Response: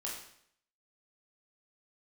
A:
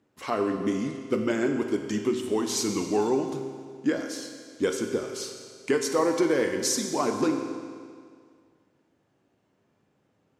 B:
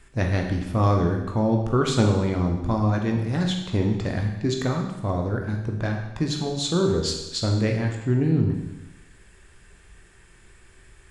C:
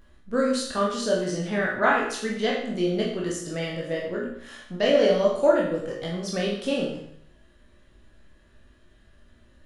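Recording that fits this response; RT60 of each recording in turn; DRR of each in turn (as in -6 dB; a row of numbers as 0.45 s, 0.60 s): C; 2.0 s, 1.0 s, 0.65 s; 4.0 dB, 1.5 dB, -4.0 dB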